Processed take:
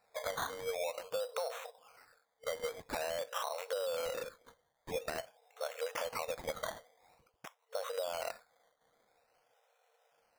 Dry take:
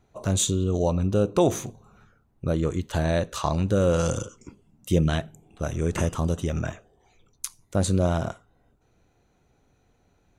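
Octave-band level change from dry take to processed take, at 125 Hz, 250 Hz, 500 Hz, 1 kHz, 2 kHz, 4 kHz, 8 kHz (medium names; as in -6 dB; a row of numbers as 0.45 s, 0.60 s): -35.0 dB, -30.0 dB, -11.0 dB, -8.5 dB, -6.0 dB, -8.0 dB, -15.5 dB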